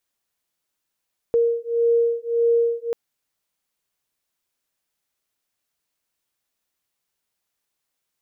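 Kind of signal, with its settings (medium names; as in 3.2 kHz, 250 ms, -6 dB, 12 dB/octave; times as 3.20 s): beating tones 466 Hz, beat 1.7 Hz, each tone -20 dBFS 1.59 s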